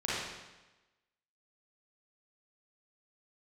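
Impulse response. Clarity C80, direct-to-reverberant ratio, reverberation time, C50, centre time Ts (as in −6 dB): 0.5 dB, −9.0 dB, 1.1 s, −4.5 dB, 99 ms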